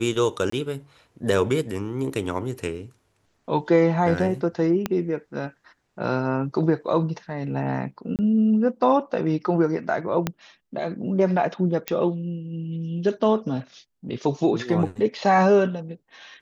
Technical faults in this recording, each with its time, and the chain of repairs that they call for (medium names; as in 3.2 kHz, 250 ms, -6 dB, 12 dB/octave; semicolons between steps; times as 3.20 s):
0.50–0.52 s: dropout 24 ms
4.86 s: pop -10 dBFS
8.16–8.19 s: dropout 28 ms
10.27 s: pop -9 dBFS
11.88 s: pop -9 dBFS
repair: de-click; interpolate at 0.50 s, 24 ms; interpolate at 8.16 s, 28 ms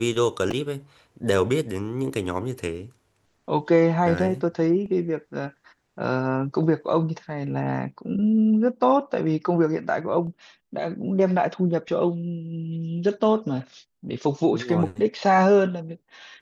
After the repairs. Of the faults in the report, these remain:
4.86 s: pop
10.27 s: pop